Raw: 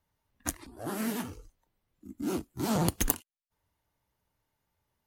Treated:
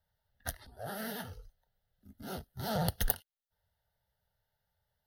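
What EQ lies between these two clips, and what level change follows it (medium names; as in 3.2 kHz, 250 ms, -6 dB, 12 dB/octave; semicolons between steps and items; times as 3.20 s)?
peaking EQ 230 Hz -4 dB 0.55 oct; static phaser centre 1.6 kHz, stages 8; 0.0 dB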